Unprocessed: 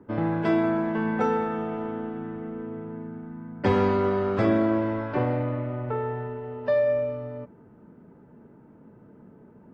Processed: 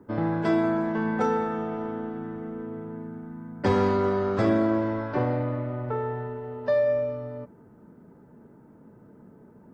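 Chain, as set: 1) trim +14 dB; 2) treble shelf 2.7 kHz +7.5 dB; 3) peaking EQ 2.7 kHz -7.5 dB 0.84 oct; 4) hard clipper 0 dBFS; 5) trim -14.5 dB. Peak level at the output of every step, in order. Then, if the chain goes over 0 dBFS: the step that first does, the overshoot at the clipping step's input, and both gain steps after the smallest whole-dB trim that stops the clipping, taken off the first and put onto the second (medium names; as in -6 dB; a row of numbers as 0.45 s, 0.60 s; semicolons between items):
+3.0 dBFS, +3.0 dBFS, +3.0 dBFS, 0.0 dBFS, -14.5 dBFS; step 1, 3.0 dB; step 1 +11 dB, step 5 -11.5 dB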